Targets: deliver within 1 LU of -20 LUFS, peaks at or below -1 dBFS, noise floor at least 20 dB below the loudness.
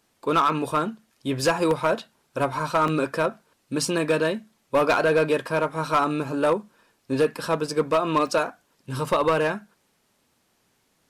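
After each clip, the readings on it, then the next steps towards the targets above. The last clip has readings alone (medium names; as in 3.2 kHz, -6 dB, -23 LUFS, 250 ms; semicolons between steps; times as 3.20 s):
clipped samples 1.0%; clipping level -14.0 dBFS; dropouts 3; longest dropout 1.6 ms; loudness -24.0 LUFS; peak level -14.0 dBFS; loudness target -20.0 LUFS
-> clip repair -14 dBFS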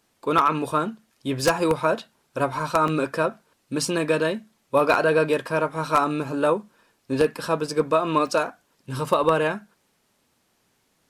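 clipped samples 0.0%; dropouts 3; longest dropout 1.6 ms
-> interpolate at 1.71/2.88/8.27 s, 1.6 ms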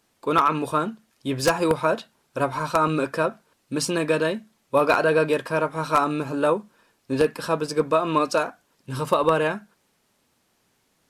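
dropouts 0; loudness -23.5 LUFS; peak level -5.0 dBFS; loudness target -20.0 LUFS
-> trim +3.5 dB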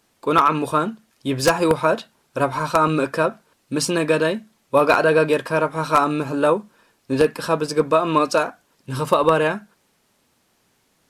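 loudness -20.0 LUFS; peak level -1.5 dBFS; noise floor -65 dBFS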